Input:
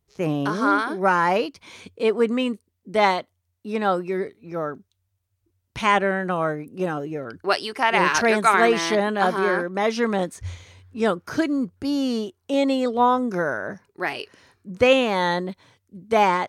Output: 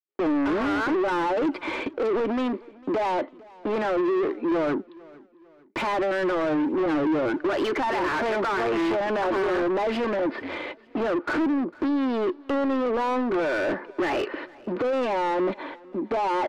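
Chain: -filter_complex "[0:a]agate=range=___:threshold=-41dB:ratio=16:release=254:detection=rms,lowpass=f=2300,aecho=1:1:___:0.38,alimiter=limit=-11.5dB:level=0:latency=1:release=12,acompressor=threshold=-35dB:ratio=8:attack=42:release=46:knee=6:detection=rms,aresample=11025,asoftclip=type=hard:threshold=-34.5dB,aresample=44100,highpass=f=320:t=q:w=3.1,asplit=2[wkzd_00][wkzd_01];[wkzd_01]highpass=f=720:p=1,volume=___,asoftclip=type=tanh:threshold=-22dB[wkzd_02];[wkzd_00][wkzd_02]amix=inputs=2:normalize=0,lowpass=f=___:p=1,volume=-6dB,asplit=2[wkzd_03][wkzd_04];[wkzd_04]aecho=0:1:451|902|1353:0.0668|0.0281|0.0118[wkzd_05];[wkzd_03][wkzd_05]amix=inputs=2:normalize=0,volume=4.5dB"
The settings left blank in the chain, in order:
-54dB, 3.4, 25dB, 1600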